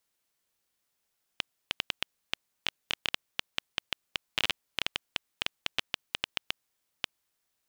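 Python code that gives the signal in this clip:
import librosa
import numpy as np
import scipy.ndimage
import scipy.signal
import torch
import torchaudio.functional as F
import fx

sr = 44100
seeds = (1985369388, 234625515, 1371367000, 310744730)

y = fx.geiger_clicks(sr, seeds[0], length_s=5.93, per_s=7.1, level_db=-9.0)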